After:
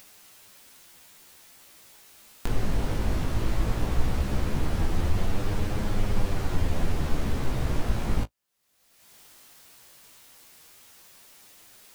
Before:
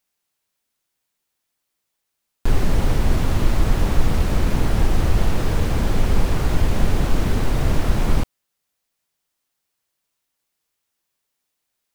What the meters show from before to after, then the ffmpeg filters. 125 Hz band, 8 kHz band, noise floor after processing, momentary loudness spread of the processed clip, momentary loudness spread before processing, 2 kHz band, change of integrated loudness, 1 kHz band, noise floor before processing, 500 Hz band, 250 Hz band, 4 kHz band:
−7.5 dB, −6.5 dB, −63 dBFS, 21 LU, 2 LU, −7.0 dB, −7.5 dB, −7.0 dB, −78 dBFS, −7.5 dB, −7.0 dB, −7.0 dB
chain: -af "acompressor=mode=upward:threshold=-19dB:ratio=2.5,flanger=delay=9.6:depth=9.7:regen=16:speed=0.17:shape=sinusoidal,volume=-4dB"

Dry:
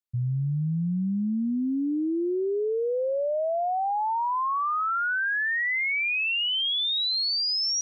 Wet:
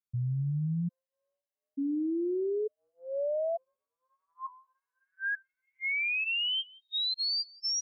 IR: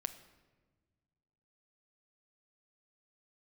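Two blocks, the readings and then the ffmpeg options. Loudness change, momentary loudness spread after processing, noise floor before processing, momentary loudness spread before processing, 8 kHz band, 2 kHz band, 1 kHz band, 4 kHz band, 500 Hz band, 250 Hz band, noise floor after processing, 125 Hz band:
−6.0 dB, 12 LU, −26 dBFS, 4 LU, can't be measured, −8.0 dB, −21.5 dB, −6.5 dB, −6.0 dB, −7.5 dB, below −85 dBFS, −4.5 dB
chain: -af "aecho=1:1:175:0.0668,afftfilt=real='re*gt(sin(2*PI*0.56*pts/sr)*(1-2*mod(floor(b*sr/1024/530),2)),0)':imag='im*gt(sin(2*PI*0.56*pts/sr)*(1-2*mod(floor(b*sr/1024/530),2)),0)':win_size=1024:overlap=0.75,volume=-4dB"

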